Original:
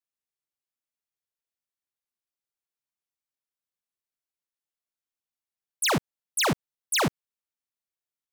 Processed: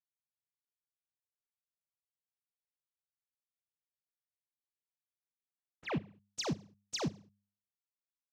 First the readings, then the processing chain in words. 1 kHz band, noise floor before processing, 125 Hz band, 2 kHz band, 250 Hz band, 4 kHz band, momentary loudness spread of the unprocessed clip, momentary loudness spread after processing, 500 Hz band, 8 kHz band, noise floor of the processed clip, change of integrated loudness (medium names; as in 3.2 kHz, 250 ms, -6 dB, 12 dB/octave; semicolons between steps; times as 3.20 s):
-16.0 dB, under -85 dBFS, -7.5 dB, -17.5 dB, -8.0 dB, -14.0 dB, 6 LU, 9 LU, -11.0 dB, -16.0 dB, under -85 dBFS, -13.0 dB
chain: dead-time distortion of 0.053 ms; FFT filter 170 Hz 0 dB, 1.6 kHz -19 dB, 7.4 kHz -9 dB; in parallel at -11 dB: bit crusher 6-bit; on the sum: compression, threshold -27 dBFS, peak gain reduction 6 dB; low-pass sweep 120 Hz -> 5.8 kHz, 5.11–6.16 s; high-pass 59 Hz; de-hum 101.1 Hz, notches 2; on a send: feedback delay 70 ms, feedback 43%, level -22 dB; on the sum: trim -4 dB